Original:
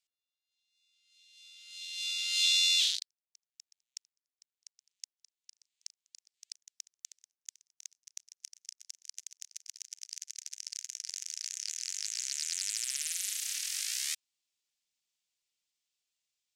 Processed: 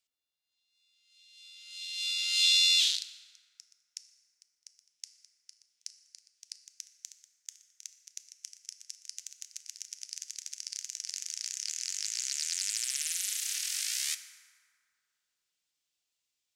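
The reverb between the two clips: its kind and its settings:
feedback delay network reverb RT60 2.4 s, high-frequency decay 0.45×, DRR 9 dB
level +1.5 dB

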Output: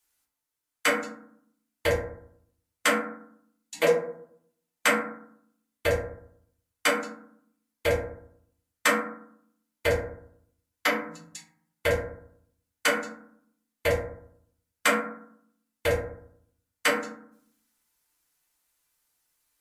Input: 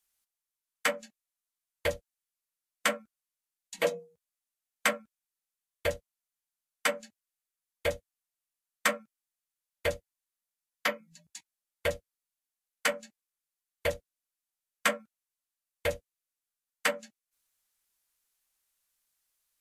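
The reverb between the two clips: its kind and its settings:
feedback delay network reverb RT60 0.65 s, low-frequency decay 1.35×, high-frequency decay 0.35×, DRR −4 dB
level +1.5 dB

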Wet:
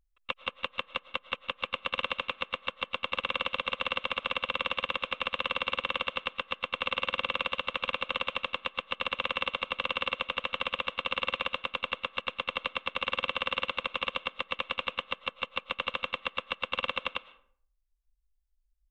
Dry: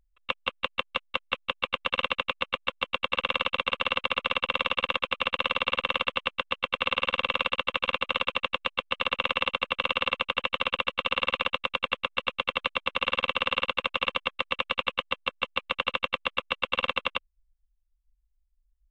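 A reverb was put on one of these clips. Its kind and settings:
comb and all-pass reverb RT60 0.57 s, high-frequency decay 0.6×, pre-delay 70 ms, DRR 17.5 dB
level −4.5 dB

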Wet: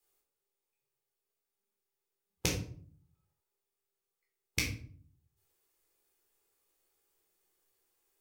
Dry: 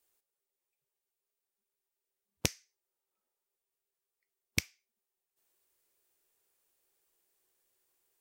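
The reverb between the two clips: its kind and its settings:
rectangular room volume 520 cubic metres, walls furnished, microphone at 4 metres
level −5 dB

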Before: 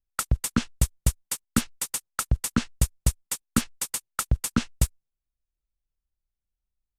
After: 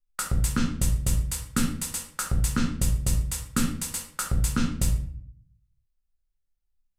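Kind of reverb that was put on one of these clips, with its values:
rectangular room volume 73 cubic metres, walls mixed, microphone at 0.96 metres
level −4.5 dB

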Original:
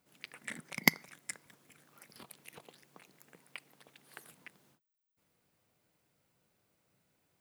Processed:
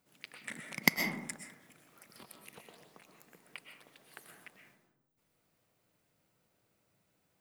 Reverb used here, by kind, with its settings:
comb and all-pass reverb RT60 1 s, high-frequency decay 0.35×, pre-delay 85 ms, DRR 3.5 dB
level −1 dB

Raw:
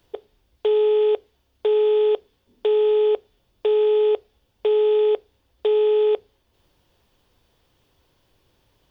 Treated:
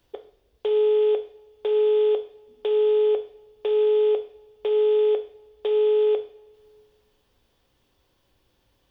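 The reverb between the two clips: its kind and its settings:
coupled-rooms reverb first 0.45 s, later 2 s, from −21 dB, DRR 6 dB
level −4 dB

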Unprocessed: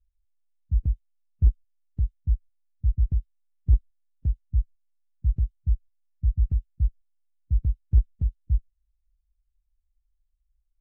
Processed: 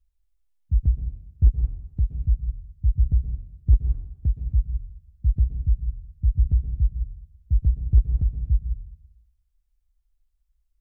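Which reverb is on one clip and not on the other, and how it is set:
dense smooth reverb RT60 0.85 s, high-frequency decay 0.9×, pre-delay 110 ms, DRR 5.5 dB
level +2.5 dB

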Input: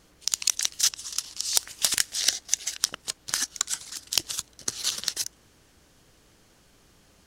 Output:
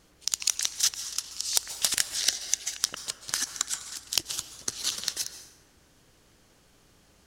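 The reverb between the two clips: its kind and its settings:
dense smooth reverb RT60 1.2 s, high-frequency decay 0.55×, pre-delay 120 ms, DRR 10 dB
level −2 dB

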